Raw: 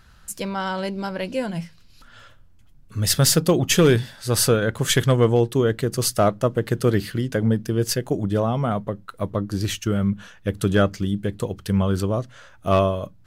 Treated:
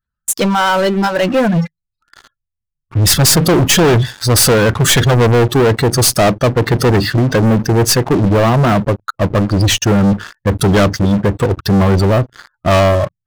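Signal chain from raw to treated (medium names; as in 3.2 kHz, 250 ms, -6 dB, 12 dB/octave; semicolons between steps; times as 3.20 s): spectral gate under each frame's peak -25 dB strong; spectral noise reduction 20 dB; waveshaping leveller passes 5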